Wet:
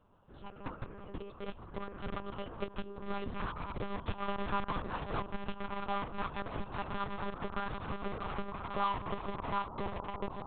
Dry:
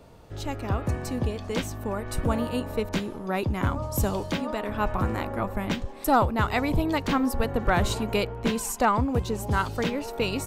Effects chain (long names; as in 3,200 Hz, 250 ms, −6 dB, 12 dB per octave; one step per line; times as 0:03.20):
source passing by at 0:04.58, 19 m/s, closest 4.5 metres
phaser with its sweep stopped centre 420 Hz, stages 8
on a send: feedback delay with all-pass diffusion 1,270 ms, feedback 58%, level −15.5 dB
on the sum: downward compressor 8 to 1, threshold −51 dBFS, peak gain reduction 25.5 dB
low-pass filter sweep 2,400 Hz → 1,000 Hz, 0:06.59–0:09.65
in parallel at −3 dB: bit-depth reduction 8 bits, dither none
on the sum: one-pitch LPC vocoder at 8 kHz 200 Hz
level +13 dB